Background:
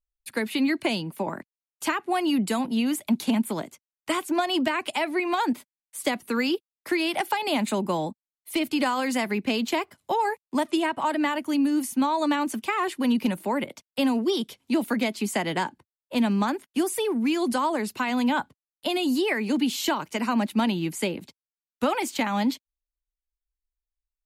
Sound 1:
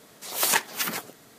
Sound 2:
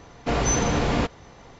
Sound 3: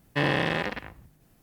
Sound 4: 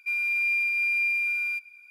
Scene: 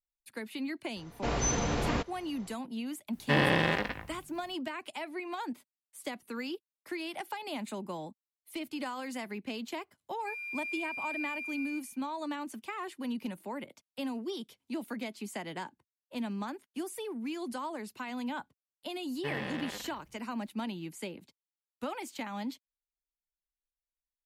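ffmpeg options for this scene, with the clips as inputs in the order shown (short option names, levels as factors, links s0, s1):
-filter_complex "[3:a]asplit=2[s0][s1];[0:a]volume=0.224[s2];[2:a]highshelf=f=6000:g=4[s3];[s0]asplit=2[s4][s5];[s5]adelay=19,volume=0.282[s6];[s4][s6]amix=inputs=2:normalize=0[s7];[s1]flanger=delay=5.4:depth=4.1:regen=-65:speed=1.5:shape=triangular[s8];[s3]atrim=end=1.59,asetpts=PTS-STARTPTS,volume=0.398,afade=t=in:d=0.004:c=hsin,afade=t=out:st=1.586:d=0.004:c=hsin,adelay=960[s9];[s7]atrim=end=1.42,asetpts=PTS-STARTPTS,volume=0.891,afade=t=in:d=0.004:c=hsin,afade=t=out:st=1.416:d=0.004:c=hsin,adelay=138033S[s10];[4:a]atrim=end=1.9,asetpts=PTS-STARTPTS,volume=0.211,afade=t=in:d=0.004:c=hsin,afade=t=out:st=1.896:d=0.004:c=hsin,adelay=10200[s11];[s8]atrim=end=1.42,asetpts=PTS-STARTPTS,volume=0.355,afade=t=in:d=0.004:c=hsin,afade=t=out:st=1.416:d=0.004:c=hsin,adelay=841428S[s12];[s2][s9][s10][s11][s12]amix=inputs=5:normalize=0"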